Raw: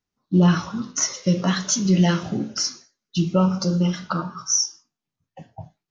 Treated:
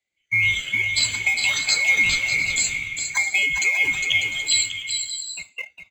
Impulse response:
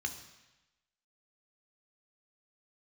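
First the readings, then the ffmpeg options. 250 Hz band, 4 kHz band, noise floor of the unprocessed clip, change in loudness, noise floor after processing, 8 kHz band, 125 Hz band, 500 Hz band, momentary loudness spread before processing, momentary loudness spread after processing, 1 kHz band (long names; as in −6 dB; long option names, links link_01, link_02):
−25.5 dB, +6.5 dB, below −85 dBFS, +2.0 dB, −72 dBFS, can't be measured, −17.5 dB, −16.5 dB, 9 LU, 9 LU, −9.5 dB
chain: -filter_complex "[0:a]afftfilt=real='real(if(lt(b,920),b+92*(1-2*mod(floor(b/92),2)),b),0)':imag='imag(if(lt(b,920),b+92*(1-2*mod(floor(b/92),2)),b),0)':win_size=2048:overlap=0.75,aresample=22050,aresample=44100,highpass=66,acrossover=split=1300[link_01][link_02];[link_01]acrusher=samples=29:mix=1:aa=0.000001:lfo=1:lforange=29:lforate=0.53[link_03];[link_03][link_02]amix=inputs=2:normalize=0,acompressor=threshold=-25dB:ratio=2,highshelf=frequency=4000:gain=-3,asplit=2[link_04][link_05];[link_05]aeval=exprs='sgn(val(0))*max(abs(val(0))-0.00562,0)':channel_layout=same,volume=-5dB[link_06];[link_04][link_06]amix=inputs=2:normalize=0,adynamicequalizer=threshold=0.0224:dfrequency=1600:dqfactor=1.4:tfrequency=1600:tqfactor=1.4:attack=5:release=100:ratio=0.375:range=2.5:mode=boostabove:tftype=bell,acrossover=split=160|3000[link_07][link_08][link_09];[link_08]acompressor=threshold=-28dB:ratio=3[link_10];[link_07][link_10][link_09]amix=inputs=3:normalize=0,aecho=1:1:407|596|701|776:0.501|0.299|0.15|0.168,volume=3dB"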